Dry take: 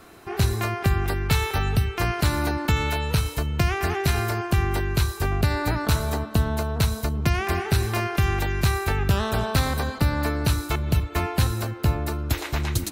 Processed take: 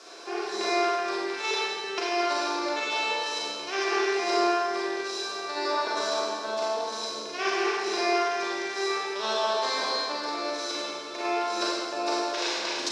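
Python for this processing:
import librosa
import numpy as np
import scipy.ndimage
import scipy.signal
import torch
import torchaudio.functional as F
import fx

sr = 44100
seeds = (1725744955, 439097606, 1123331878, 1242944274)

y = fx.over_compress(x, sr, threshold_db=-26.0, ratio=-0.5)
y = fx.rev_schroeder(y, sr, rt60_s=1.5, comb_ms=33, drr_db=-5.5)
y = fx.dmg_noise_colour(y, sr, seeds[0], colour='violet', level_db=-41.0)
y = fx.cabinet(y, sr, low_hz=420.0, low_slope=24, high_hz=6000.0, hz=(470.0, 780.0, 1300.0, 2000.0, 2900.0, 5300.0), db=(-3, -8, -8, -9, -4, 7))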